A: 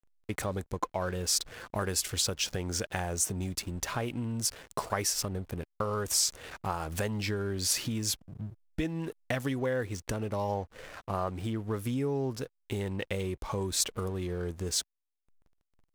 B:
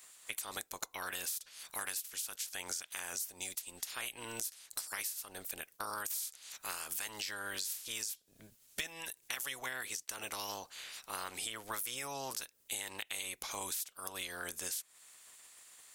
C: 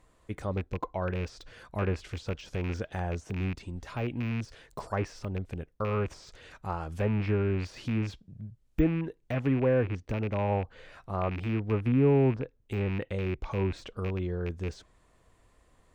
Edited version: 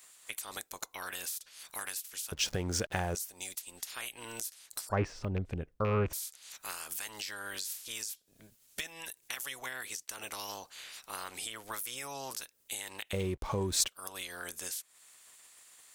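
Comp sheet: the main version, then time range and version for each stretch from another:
B
2.32–3.15 s: from A
4.89–6.13 s: from C
13.13–13.88 s: from A

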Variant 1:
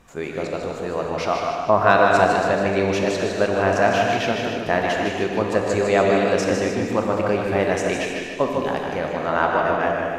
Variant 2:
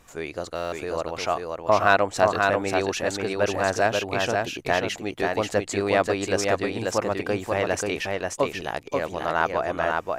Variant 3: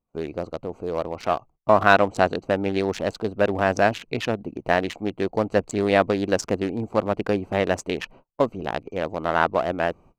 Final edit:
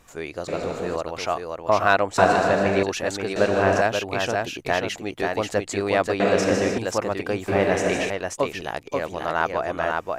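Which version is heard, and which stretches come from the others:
2
0.48–0.96 s: from 1
2.18–2.83 s: from 1
3.36–3.81 s: from 1
6.20–6.78 s: from 1
7.48–8.10 s: from 1
not used: 3

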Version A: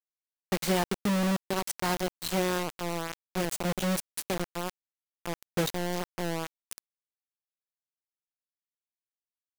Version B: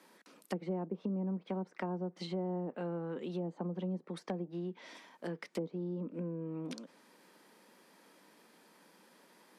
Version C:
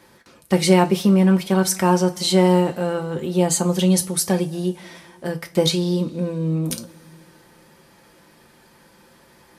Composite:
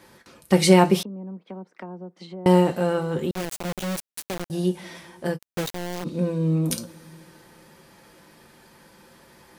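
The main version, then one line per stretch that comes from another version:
C
1.03–2.46 s: from B
3.31–4.50 s: from A
5.36–6.05 s: from A, crossfade 0.06 s

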